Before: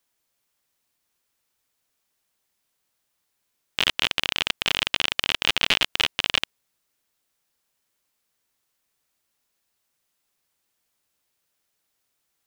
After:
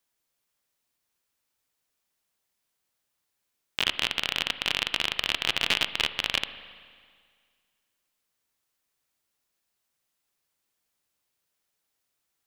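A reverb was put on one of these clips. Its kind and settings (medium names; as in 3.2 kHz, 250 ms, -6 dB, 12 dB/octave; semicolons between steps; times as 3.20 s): spring tank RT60 1.9 s, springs 39/55 ms, chirp 30 ms, DRR 11.5 dB; trim -4 dB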